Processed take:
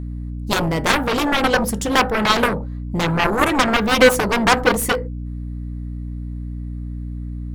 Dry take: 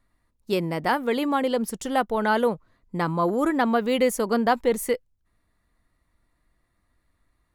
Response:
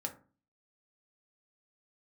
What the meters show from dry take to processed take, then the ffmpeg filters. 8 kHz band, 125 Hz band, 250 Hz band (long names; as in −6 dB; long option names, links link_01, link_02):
+10.0 dB, +11.0 dB, +4.5 dB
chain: -filter_complex "[0:a]asplit=2[link_01][link_02];[1:a]atrim=start_sample=2205,atrim=end_sample=6174[link_03];[link_02][link_03]afir=irnorm=-1:irlink=0,volume=-1.5dB[link_04];[link_01][link_04]amix=inputs=2:normalize=0,aeval=exprs='val(0)+0.0251*(sin(2*PI*60*n/s)+sin(2*PI*2*60*n/s)/2+sin(2*PI*3*60*n/s)/3+sin(2*PI*4*60*n/s)/4+sin(2*PI*5*60*n/s)/5)':channel_layout=same,aeval=exprs='0.668*(cos(1*acos(clip(val(0)/0.668,-1,1)))-cos(1*PI/2))+0.106*(cos(3*acos(clip(val(0)/0.668,-1,1)))-cos(3*PI/2))+0.188*(cos(7*acos(clip(val(0)/0.668,-1,1)))-cos(7*PI/2))':channel_layout=same,volume=2.5dB"